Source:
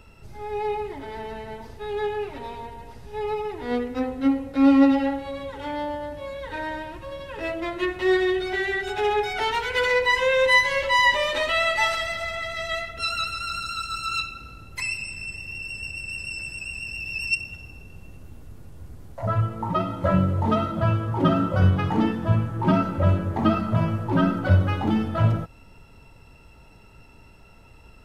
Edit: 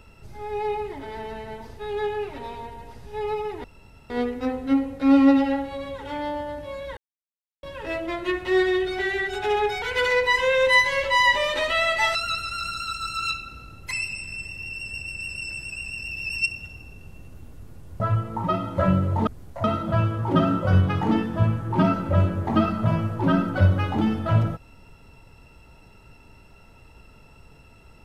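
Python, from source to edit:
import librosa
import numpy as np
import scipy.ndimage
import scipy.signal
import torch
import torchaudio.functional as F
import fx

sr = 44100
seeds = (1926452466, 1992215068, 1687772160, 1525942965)

y = fx.edit(x, sr, fx.insert_room_tone(at_s=3.64, length_s=0.46),
    fx.silence(start_s=6.51, length_s=0.66),
    fx.cut(start_s=9.36, length_s=0.25),
    fx.cut(start_s=11.94, length_s=1.1),
    fx.move(start_s=18.89, length_s=0.37, to_s=20.53), tone=tone)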